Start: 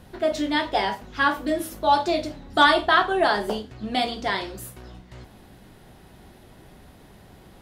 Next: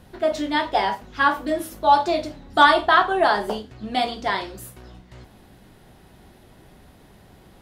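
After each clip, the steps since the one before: dynamic bell 960 Hz, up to +5 dB, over -31 dBFS, Q 1; trim -1 dB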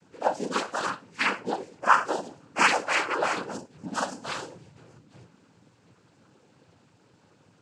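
frequency axis rescaled in octaves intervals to 121%; noise-vocoded speech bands 8; trim -3.5 dB

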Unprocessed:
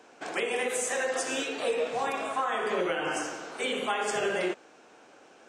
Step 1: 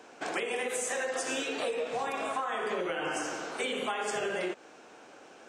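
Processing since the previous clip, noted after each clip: compression, threshold -32 dBFS, peak gain reduction 8.5 dB; trim +2.5 dB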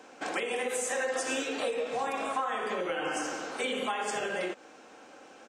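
comb 3.8 ms, depth 31%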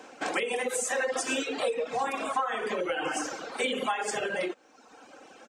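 reverb removal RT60 1.2 s; trim +4 dB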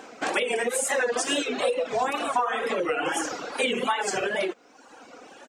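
wow and flutter 140 cents; trim +4 dB

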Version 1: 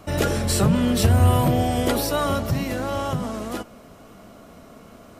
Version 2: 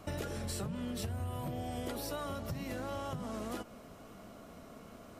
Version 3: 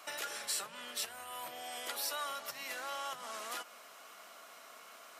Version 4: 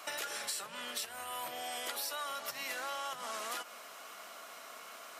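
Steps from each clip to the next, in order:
compression 10:1, threshold -29 dBFS, peak gain reduction 17 dB; trim -6.5 dB
high-pass 1.2 kHz 12 dB/octave; trim +7 dB
compression, threshold -40 dBFS, peak gain reduction 8 dB; trim +4.5 dB

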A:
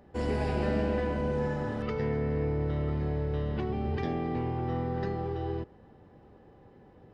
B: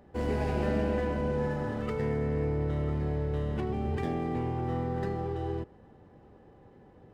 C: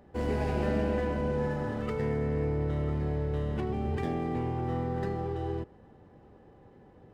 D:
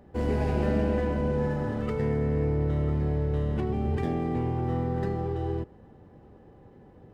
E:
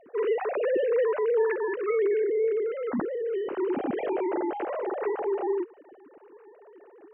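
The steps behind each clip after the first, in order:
median filter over 9 samples
no audible change
bass shelf 460 Hz +4.5 dB
formants replaced by sine waves

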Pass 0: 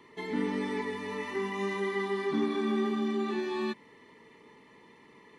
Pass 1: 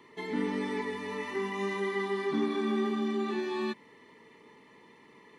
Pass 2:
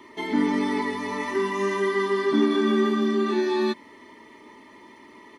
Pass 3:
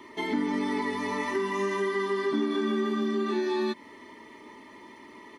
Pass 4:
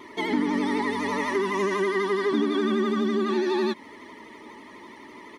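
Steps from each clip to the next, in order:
bass shelf 72 Hz -6.5 dB
comb 3.2 ms, depth 67%; trim +7 dB
compression 3:1, threshold -26 dBFS, peak gain reduction 8 dB
vibrato 12 Hz 77 cents; trim +3.5 dB

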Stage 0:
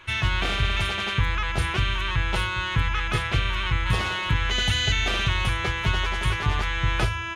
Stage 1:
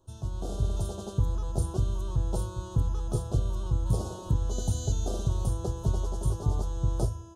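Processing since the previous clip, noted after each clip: Chebyshev band-stop 570–7300 Hz, order 2; level rider gain up to 7.5 dB; trim -8.5 dB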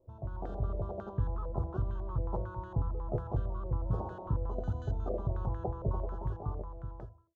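fade out at the end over 1.36 s; step-sequenced low-pass 11 Hz 560–1700 Hz; trim -6 dB

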